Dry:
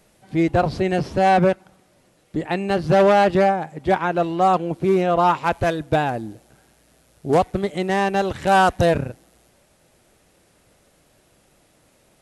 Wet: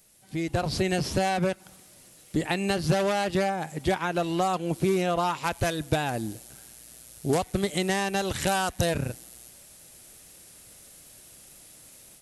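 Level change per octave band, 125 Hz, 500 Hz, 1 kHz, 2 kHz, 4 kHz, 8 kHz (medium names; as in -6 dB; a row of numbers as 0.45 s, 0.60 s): -4.5 dB, -8.5 dB, -10.0 dB, -6.0 dB, 0.0 dB, +6.5 dB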